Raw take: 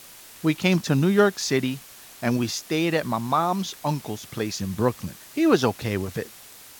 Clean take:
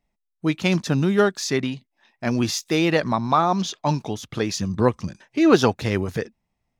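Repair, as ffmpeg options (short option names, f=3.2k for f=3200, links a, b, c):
-af "adeclick=t=4,afwtdn=0.0056,asetnsamples=n=441:p=0,asendcmd='2.37 volume volume 3.5dB',volume=0dB"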